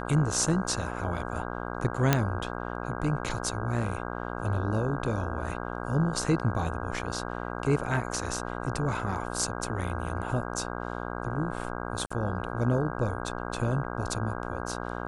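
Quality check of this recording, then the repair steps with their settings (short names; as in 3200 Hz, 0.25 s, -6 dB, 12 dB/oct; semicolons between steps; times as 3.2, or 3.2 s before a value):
buzz 60 Hz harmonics 27 -35 dBFS
2.13 pop -6 dBFS
12.06–12.11 gap 45 ms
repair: de-click; de-hum 60 Hz, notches 27; interpolate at 12.06, 45 ms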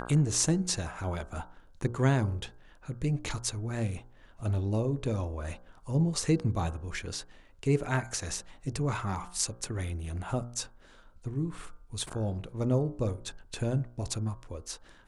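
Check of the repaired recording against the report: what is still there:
none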